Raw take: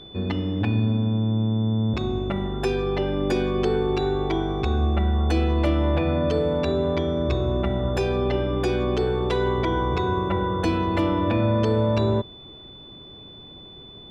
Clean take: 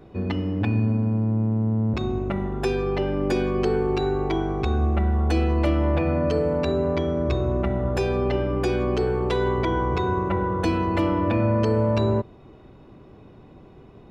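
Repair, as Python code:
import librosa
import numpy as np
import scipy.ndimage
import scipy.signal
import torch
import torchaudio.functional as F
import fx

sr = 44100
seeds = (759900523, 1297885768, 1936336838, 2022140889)

y = fx.notch(x, sr, hz=3500.0, q=30.0)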